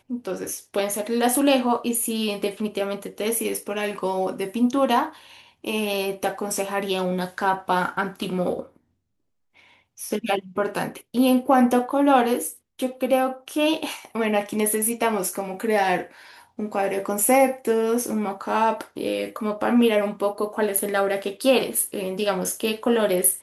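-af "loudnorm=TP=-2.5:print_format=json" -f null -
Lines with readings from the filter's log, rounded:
"input_i" : "-23.2",
"input_tp" : "-3.8",
"input_lra" : "3.9",
"input_thresh" : "-33.5",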